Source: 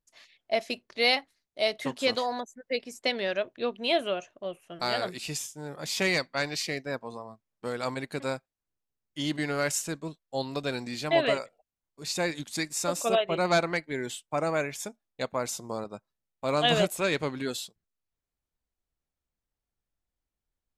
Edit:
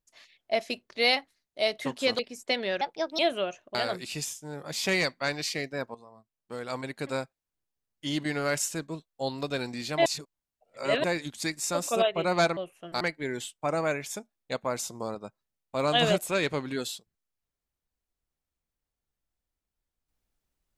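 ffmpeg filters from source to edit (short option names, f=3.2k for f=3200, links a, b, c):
-filter_complex "[0:a]asplit=10[a][b][c][d][e][f][g][h][i][j];[a]atrim=end=2.192[k];[b]atrim=start=2.748:end=3.374[l];[c]atrim=start=3.37:end=3.88,asetpts=PTS-STARTPTS,asetrate=59535,aresample=44100[m];[d]atrim=start=3.876:end=4.442[n];[e]atrim=start=4.878:end=7.08,asetpts=PTS-STARTPTS,afade=t=out:st=2.198:d=0.004:c=hsin:silence=0.199526[o];[f]atrim=start=7.08:end=11.192,asetpts=PTS-STARTPTS,afade=t=in:d=1.17:silence=0.199526[p];[g]atrim=start=11.188:end=12.172,asetpts=PTS-STARTPTS,areverse[q];[h]atrim=start=12.168:end=13.702[r];[i]atrim=start=4.438:end=4.882[s];[j]atrim=start=13.698[t];[k][l]acrossfade=d=0.004:c1=hsin:c2=hsin[u];[u][m]acrossfade=d=0.004:c1=hsin:c2=hsin[v];[v][n]acrossfade=d=0.004:c1=hsin:c2=hsin[w];[o][p]concat=n=2:v=0:a=1[x];[w][x]acrossfade=d=0.004:c1=hsin:c2=hsin[y];[y][q]acrossfade=d=0.004:c1=hsin:c2=hsin[z];[z][r]acrossfade=d=0.004:c1=hsin:c2=hsin[aa];[aa][s]acrossfade=d=0.004:c1=hsin:c2=hsin[ab];[ab][t]acrossfade=d=0.004:c1=hsin:c2=hsin"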